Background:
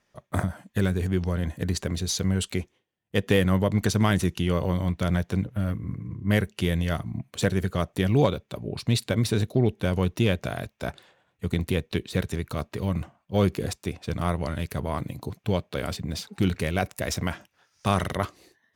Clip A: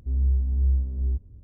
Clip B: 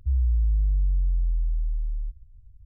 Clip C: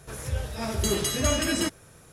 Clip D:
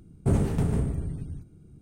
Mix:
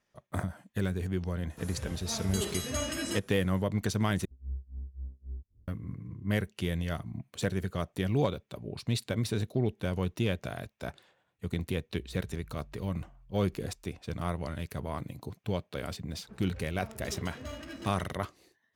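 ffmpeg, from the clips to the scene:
-filter_complex "[3:a]asplit=2[a][b];[0:a]volume=-7dB[c];[a]highpass=58[d];[1:a]tremolo=f=3.7:d=0.95[e];[2:a]highpass=140[f];[b]adynamicsmooth=sensitivity=4:basefreq=1k[g];[c]asplit=2[h][i];[h]atrim=end=4.254[j];[e]atrim=end=1.43,asetpts=PTS-STARTPTS,volume=-13.5dB[k];[i]atrim=start=5.676[l];[d]atrim=end=2.12,asetpts=PTS-STARTPTS,volume=-8.5dB,afade=t=in:d=0.004:c=hsin,afade=t=out:st=2.116:d=0.004:c=hsin,adelay=1500[m];[f]atrim=end=2.65,asetpts=PTS-STARTPTS,volume=-13dB,afade=t=in:d=0.004:c=hsin,afade=t=out:st=2.646:d=0.004:c=hsin,adelay=11890[n];[g]atrim=end=2.12,asetpts=PTS-STARTPTS,volume=-16.5dB,afade=t=in:d=0.004:c=hsin,afade=t=out:st=2.116:d=0.004:c=hsin,adelay=16210[o];[j][k]acrossfade=d=0.004:c1=hsin:c2=hsin[p];[p][l]acrossfade=d=0.004:c1=hsin:c2=hsin[q];[q][m][n][o]amix=inputs=4:normalize=0"

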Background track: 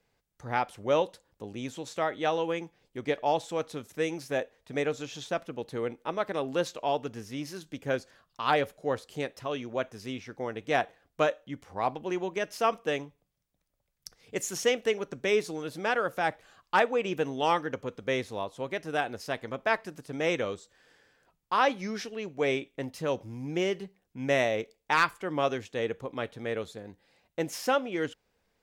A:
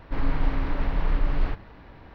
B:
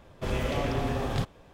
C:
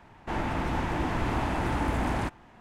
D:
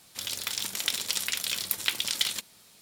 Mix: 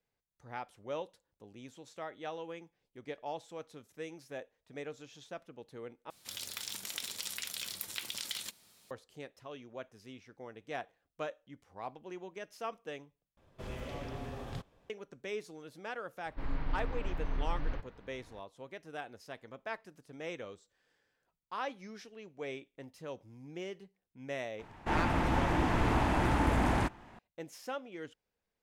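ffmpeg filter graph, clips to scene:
-filter_complex "[0:a]volume=-13.5dB[a];[4:a]acompressor=threshold=-35dB:ratio=3:attack=65:release=34:knee=6:detection=rms[b];[a]asplit=3[c][d][e];[c]atrim=end=6.104[f];[b]atrim=end=2.81,asetpts=PTS-STARTPTS,volume=-7.5dB[g];[d]atrim=start=8.906:end=13.374[h];[2:a]atrim=end=1.53,asetpts=PTS-STARTPTS,volume=-13dB[i];[e]atrim=start=14.896[j];[1:a]atrim=end=2.14,asetpts=PTS-STARTPTS,volume=-11dB,afade=t=in:d=0.004:c=hsin,afade=t=out:st=2.136:d=0.004:c=hsin,adelay=16260[k];[3:a]atrim=end=2.6,asetpts=PTS-STARTPTS,volume=-0.5dB,afade=t=in:d=0.004:c=hsin,afade=t=out:st=2.596:d=0.004:c=hsin,adelay=24590[l];[f][g]acrossfade=d=0.004:c1=hsin:c2=hsin[m];[m][h]acrossfade=d=0.004:c1=hsin:c2=hsin[n];[n][i]acrossfade=d=0.004:c1=hsin:c2=hsin[o];[o][j]acrossfade=d=0.004:c1=hsin:c2=hsin[p];[p][k][l]amix=inputs=3:normalize=0"

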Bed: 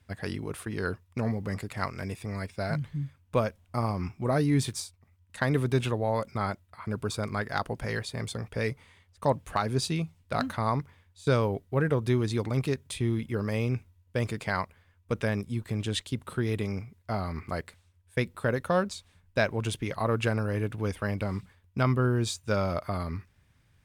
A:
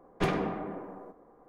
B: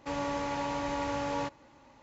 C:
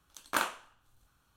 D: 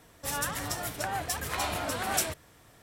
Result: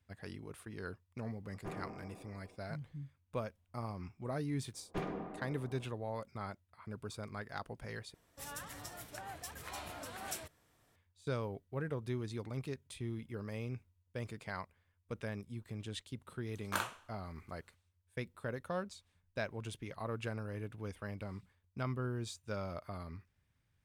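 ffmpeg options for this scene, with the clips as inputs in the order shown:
-filter_complex "[1:a]asplit=2[a][b];[0:a]volume=-13dB[c];[a]equalizer=f=3.6k:w=1.1:g=-14[d];[b]equalizer=f=4.1k:w=0.35:g=-4.5[e];[3:a]dynaudnorm=f=170:g=3:m=11dB[f];[c]asplit=2[g][h];[g]atrim=end=8.144[i];[4:a]atrim=end=2.82,asetpts=PTS-STARTPTS,volume=-14dB[j];[h]atrim=start=10.956[k];[d]atrim=end=1.48,asetpts=PTS-STARTPTS,volume=-15.5dB,afade=t=in:d=0.004:c=hsin,afade=t=out:st=1.476:d=0.004:c=hsin,adelay=1440[l];[e]atrim=end=1.48,asetpts=PTS-STARTPTS,volume=-10dB,afade=t=in:d=0.004:c=hsin,afade=t=out:st=1.476:d=0.004:c=hsin,adelay=4740[m];[f]atrim=end=1.36,asetpts=PTS-STARTPTS,volume=-16dB,afade=t=in:d=0.004:c=hsin,afade=t=out:st=1.356:d=0.004:c=hsin,adelay=16390[n];[i][j]acrossfade=d=0.004:c1=hsin:c2=hsin[o];[o][k]acrossfade=d=0.004:c1=hsin:c2=hsin[p];[p][l][m][n]amix=inputs=4:normalize=0"

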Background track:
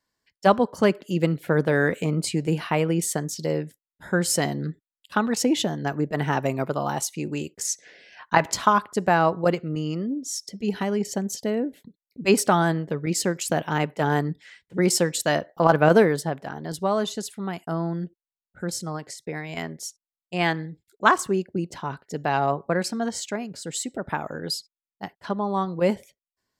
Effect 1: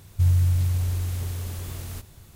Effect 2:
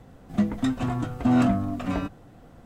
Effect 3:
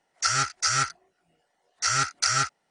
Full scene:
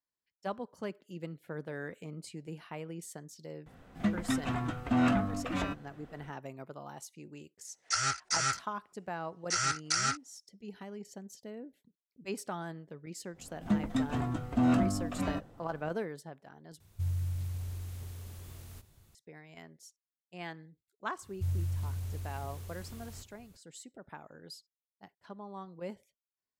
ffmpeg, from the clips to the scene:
-filter_complex "[2:a]asplit=2[a][b];[1:a]asplit=2[c][d];[0:a]volume=-19.5dB[e];[a]equalizer=f=2.1k:w=0.59:g=8[f];[e]asplit=2[g][h];[g]atrim=end=16.804[i];[c]atrim=end=2.35,asetpts=PTS-STARTPTS,volume=-13.5dB[j];[h]atrim=start=19.146[k];[f]atrim=end=2.65,asetpts=PTS-STARTPTS,volume=-7.5dB,afade=t=in:d=0.004:c=hsin,afade=t=out:st=2.646:d=0.004:c=hsin,adelay=3660[l];[3:a]atrim=end=2.7,asetpts=PTS-STARTPTS,volume=-6.5dB,afade=t=in:d=0.004:c=hsin,afade=t=out:st=2.696:d=0.004:c=hsin,adelay=7680[m];[b]atrim=end=2.65,asetpts=PTS-STARTPTS,volume=-6dB,afade=t=in:d=0.1,afade=t=out:st=2.55:d=0.1,adelay=587412S[n];[d]atrim=end=2.35,asetpts=PTS-STARTPTS,volume=-13dB,afade=t=in:d=0.004:c=hsin,afade=t=out:st=2.346:d=0.004:c=hsin,adelay=21220[o];[i][j]acrossfade=d=0.004:c1=hsin:c2=hsin[p];[p][k]acrossfade=d=0.004:c1=hsin:c2=hsin[q];[q][l][m][n][o]amix=inputs=5:normalize=0"

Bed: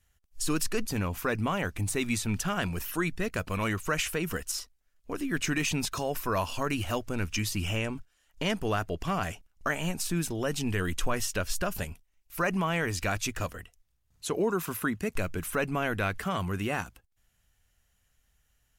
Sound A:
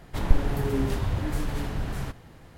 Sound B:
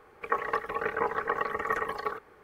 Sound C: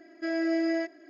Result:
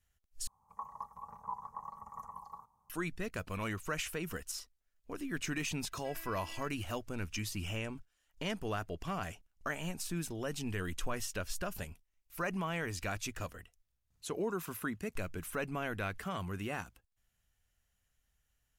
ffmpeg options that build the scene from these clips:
-filter_complex "[0:a]volume=-8dB[a];[2:a]firequalizer=gain_entry='entry(190,0);entry(360,-30);entry(970,8);entry(1500,-30);entry(2600,-28);entry(6300,0)':delay=0.05:min_phase=1[b];[3:a]bandpass=f=2.8k:t=q:w=5.8:csg=0[c];[a]asplit=2[d][e];[d]atrim=end=0.474[f];[b]atrim=end=2.43,asetpts=PTS-STARTPTS,volume=-11.5dB[g];[e]atrim=start=2.896[h];[c]atrim=end=1.09,asetpts=PTS-STARTPTS,volume=-1dB,afade=t=in:d=0.004:c=hsin,afade=t=out:st=1.086:d=0.004:c=hsin,adelay=5820[i];[f][g]acrossfade=d=0.004:c1=hsin:c2=hsin[j];[j][h]acrossfade=d=0.004:c1=hsin:c2=hsin[k];[k][i]amix=inputs=2:normalize=0"

